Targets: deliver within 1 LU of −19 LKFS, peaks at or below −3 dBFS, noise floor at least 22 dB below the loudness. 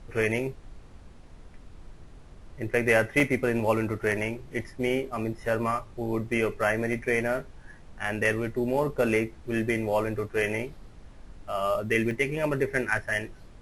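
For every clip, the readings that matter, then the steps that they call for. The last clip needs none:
number of dropouts 4; longest dropout 1.4 ms; background noise floor −49 dBFS; target noise floor −50 dBFS; integrated loudness −27.5 LKFS; sample peak −8.0 dBFS; target loudness −19.0 LKFS
→ repair the gap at 0:03.20/0:06.93/0:11.53/0:12.11, 1.4 ms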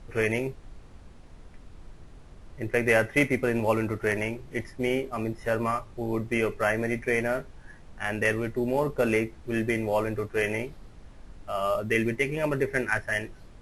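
number of dropouts 0; background noise floor −49 dBFS; target noise floor −50 dBFS
→ noise reduction from a noise print 6 dB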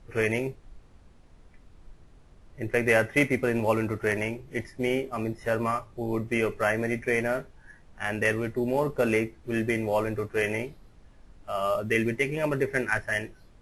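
background noise floor −55 dBFS; integrated loudness −27.5 LKFS; sample peak −8.0 dBFS; target loudness −19.0 LKFS
→ level +8.5 dB
brickwall limiter −3 dBFS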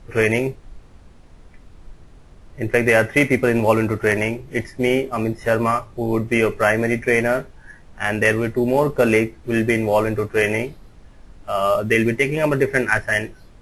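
integrated loudness −19.5 LKFS; sample peak −3.0 dBFS; background noise floor −47 dBFS

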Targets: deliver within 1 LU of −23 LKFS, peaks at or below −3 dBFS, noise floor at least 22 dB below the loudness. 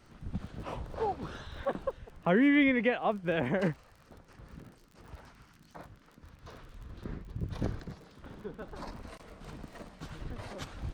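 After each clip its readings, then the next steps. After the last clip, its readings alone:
crackle rate 32 per second; integrated loudness −32.5 LKFS; sample peak −15.0 dBFS; target loudness −23.0 LKFS
→ click removal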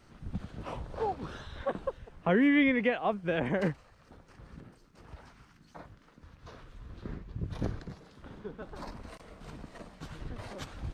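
crackle rate 0 per second; integrated loudness −32.5 LKFS; sample peak −15.0 dBFS; target loudness −23.0 LKFS
→ level +9.5 dB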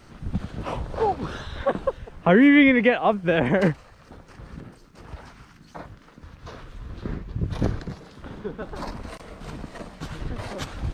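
integrated loudness −23.0 LKFS; sample peak −5.5 dBFS; background noise floor −51 dBFS

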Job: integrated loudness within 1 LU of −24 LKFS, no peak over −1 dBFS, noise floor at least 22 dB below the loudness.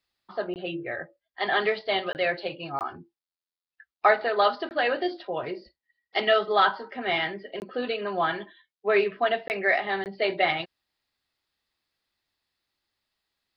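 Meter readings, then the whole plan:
number of dropouts 7; longest dropout 19 ms; integrated loudness −26.5 LKFS; sample peak −7.5 dBFS; target loudness −24.0 LKFS
→ repair the gap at 0:00.54/0:02.13/0:02.79/0:04.69/0:07.60/0:09.48/0:10.04, 19 ms
level +2.5 dB

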